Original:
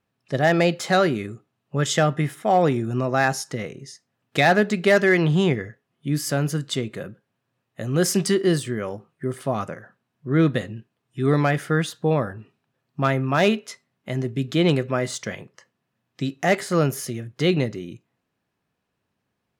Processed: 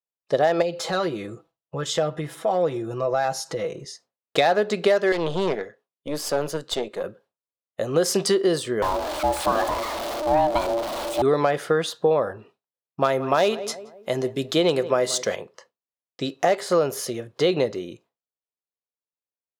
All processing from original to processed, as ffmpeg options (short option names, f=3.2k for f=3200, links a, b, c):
-filter_complex "[0:a]asettb=1/sr,asplit=3[a][b][c];[a]atrim=end=0.624[d];[b]atrim=start=0.62:end=3.85,asetpts=PTS-STARTPTS,afade=t=in:d=0.004:c=qsin,afade=t=out:st=3.226:d=0.004:c=qsin,aecho=1:1:6.1:0.65,atrim=end_sample=142443,acompressor=threshold=-33dB:ratio=2:attack=3.2:release=140:knee=1:detection=peak,lowshelf=f=110:g=11[e];[c]atrim=start=3.846[f];[d][e]acrossfade=d=0.004:c1=hsin:c2=qsin[g];[g][f]acrossfade=d=0.004:c1=qsin:c2=hsin,asettb=1/sr,asplit=3[h][i][j];[h]atrim=end=5.124[k];[i]atrim=start=5.12:end=7.04,asetpts=PTS-STARTPTS,afade=t=in:d=0.004:c=qsin,afade=t=out:st=1.916:d=0.004:c=qsin,highpass=f=140:w=0.5412,highpass=f=140:w=1.3066,aeval=exprs='(tanh(11.2*val(0)+0.7)-tanh(0.7))/11.2':c=same[l];[j]atrim=start=7.036[m];[k][l]acrossfade=d=0.004:c1=hsin:c2=qsin[n];[n][m]acrossfade=d=0.004:c1=qsin:c2=hsin,asettb=1/sr,asplit=3[o][p][q];[o]atrim=end=8.824[r];[p]atrim=start=8.82:end=11.22,asetpts=PTS-STARTPTS,afade=t=in:d=0.004:c=qsin,afade=t=out:st=2.396:d=0.004:c=qsin,aeval=exprs='val(0)+0.5*0.0562*sgn(val(0))':c=same,aeval=exprs='val(0)*sin(2*PI*460*n/s)':c=same[s];[q]atrim=start=11.216[t];[r][s]acrossfade=d=0.004:c1=hsin:c2=qsin[u];[u][t]acrossfade=d=0.004:c1=qsin:c2=hsin,asettb=1/sr,asplit=3[v][w][x];[v]atrim=end=13.014[y];[w]atrim=start=13.01:end=15.36,asetpts=PTS-STARTPTS,afade=t=in:d=0.004:c=qsin,afade=t=out:st=2.346:d=0.004:c=qsin,highshelf=f=6.2k:g=9,asplit=2[z][aa];[aa]adelay=176,lowpass=f=1.6k:p=1,volume=-18.5dB,asplit=2[ab][ac];[ac]adelay=176,lowpass=f=1.6k:p=1,volume=0.42,asplit=2[ad][ae];[ae]adelay=176,lowpass=f=1.6k:p=1,volume=0.42[af];[z][ab][ad][af]amix=inputs=4:normalize=0,atrim=end_sample=103635[ag];[x]atrim=start=15.356[ah];[y][ag]acrossfade=d=0.004:c1=hsin:c2=qsin[ai];[ai][ah]acrossfade=d=0.004:c1=qsin:c2=hsin,equalizer=f=125:t=o:w=1:g=-8,equalizer=f=250:t=o:w=1:g=-4,equalizer=f=500:t=o:w=1:g=10,equalizer=f=1k:t=o:w=1:g=6,equalizer=f=2k:t=o:w=1:g=-3,equalizer=f=4k:t=o:w=1:g=6,acompressor=threshold=-16dB:ratio=6,agate=range=-33dB:threshold=-48dB:ratio=3:detection=peak"